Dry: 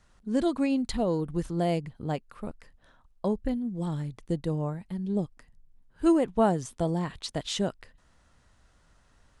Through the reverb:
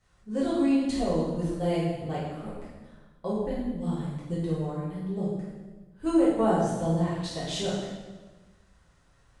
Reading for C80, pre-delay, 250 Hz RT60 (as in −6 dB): 2.5 dB, 4 ms, 1.5 s